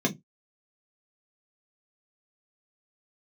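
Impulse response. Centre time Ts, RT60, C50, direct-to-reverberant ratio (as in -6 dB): 9 ms, 0.15 s, 21.5 dB, -1.5 dB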